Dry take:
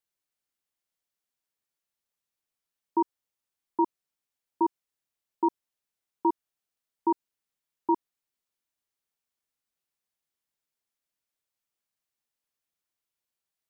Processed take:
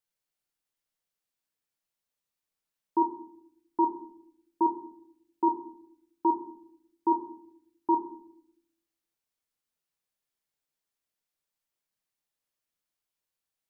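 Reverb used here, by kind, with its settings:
rectangular room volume 140 cubic metres, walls mixed, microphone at 0.52 metres
level −1.5 dB

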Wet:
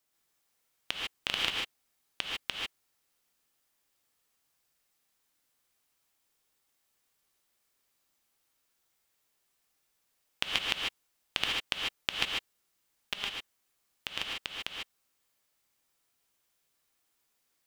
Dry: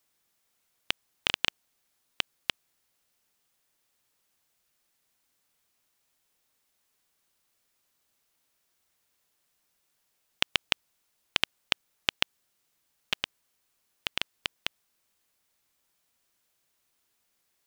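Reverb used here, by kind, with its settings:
reverb whose tail is shaped and stops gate 170 ms rising, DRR −2 dB
level −5.5 dB

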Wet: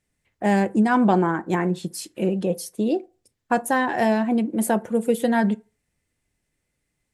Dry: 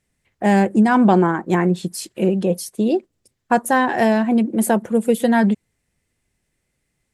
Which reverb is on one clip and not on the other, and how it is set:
feedback delay network reverb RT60 0.33 s, low-frequency decay 0.8×, high-frequency decay 0.55×, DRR 13.5 dB
level −4 dB

